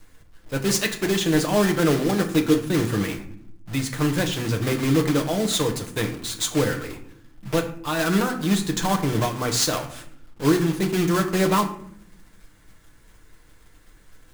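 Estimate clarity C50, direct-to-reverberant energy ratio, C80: 10.5 dB, 2.5 dB, 13.5 dB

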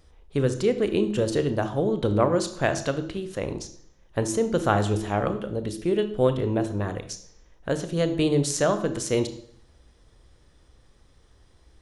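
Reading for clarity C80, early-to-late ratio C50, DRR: 15.0 dB, 12.0 dB, 9.0 dB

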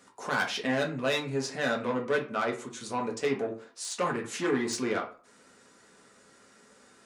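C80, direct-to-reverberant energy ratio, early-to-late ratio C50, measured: 16.0 dB, −1.0 dB, 10.0 dB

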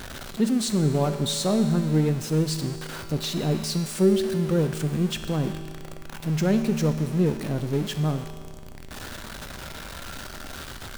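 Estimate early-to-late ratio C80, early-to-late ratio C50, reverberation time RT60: 9.5 dB, 8.5 dB, 2.1 s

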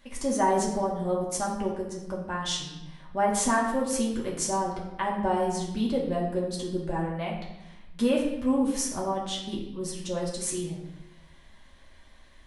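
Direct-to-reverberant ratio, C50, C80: −3.5 dB, 4.5 dB, 6.5 dB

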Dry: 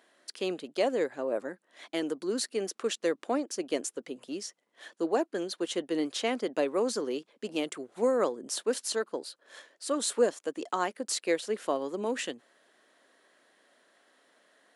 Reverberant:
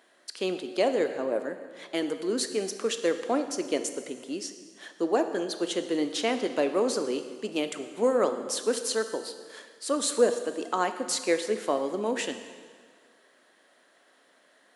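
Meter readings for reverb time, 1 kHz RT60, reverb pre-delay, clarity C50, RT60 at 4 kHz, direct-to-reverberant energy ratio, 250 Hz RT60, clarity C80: 1.7 s, 1.7 s, 6 ms, 9.5 dB, 1.6 s, 8.0 dB, 1.7 s, 10.5 dB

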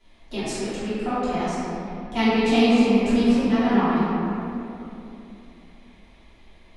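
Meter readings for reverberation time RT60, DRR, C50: 2.9 s, −14.5 dB, −5.0 dB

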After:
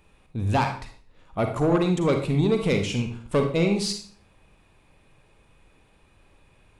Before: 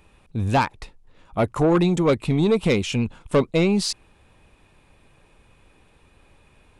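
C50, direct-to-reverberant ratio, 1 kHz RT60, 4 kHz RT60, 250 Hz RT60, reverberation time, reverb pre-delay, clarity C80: 6.5 dB, 4.5 dB, 0.40 s, 0.40 s, 0.55 s, 0.45 s, 36 ms, 10.5 dB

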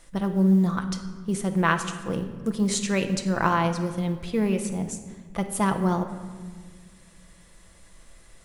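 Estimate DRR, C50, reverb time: 5.5 dB, 9.5 dB, 1.5 s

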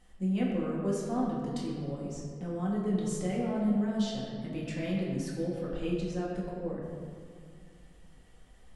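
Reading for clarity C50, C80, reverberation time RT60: 0.5 dB, 2.0 dB, 2.2 s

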